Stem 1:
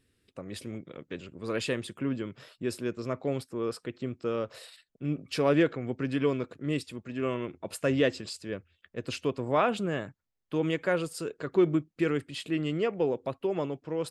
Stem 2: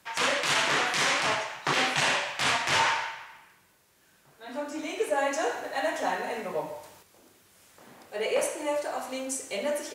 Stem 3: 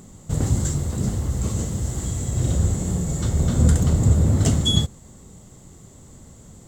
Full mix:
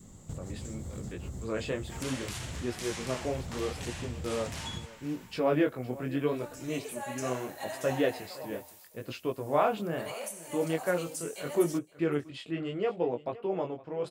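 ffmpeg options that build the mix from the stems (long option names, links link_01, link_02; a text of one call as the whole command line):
ffmpeg -i stem1.wav -i stem2.wav -i stem3.wav -filter_complex "[0:a]highshelf=frequency=6500:gain=-10.5,flanger=delay=16.5:depth=7.6:speed=0.76,volume=-1dB,asplit=3[link_01][link_02][link_03];[link_02]volume=-18.5dB[link_04];[1:a]aemphasis=mode=production:type=riaa,adelay=1850,volume=-13.5dB,asplit=2[link_05][link_06];[link_06]volume=-24dB[link_07];[2:a]volume=-7dB[link_08];[link_03]apad=whole_len=294339[link_09];[link_08][link_09]sidechaincompress=threshold=-45dB:ratio=4:attack=20:release=309[link_10];[link_05][link_10]amix=inputs=2:normalize=0,acompressor=threshold=-37dB:ratio=6,volume=0dB[link_11];[link_04][link_07]amix=inputs=2:normalize=0,aecho=0:1:513:1[link_12];[link_01][link_11][link_12]amix=inputs=3:normalize=0,adynamicequalizer=threshold=0.00398:dfrequency=730:dqfactor=1.7:tfrequency=730:tqfactor=1.7:attack=5:release=100:ratio=0.375:range=3:mode=boostabove:tftype=bell" out.wav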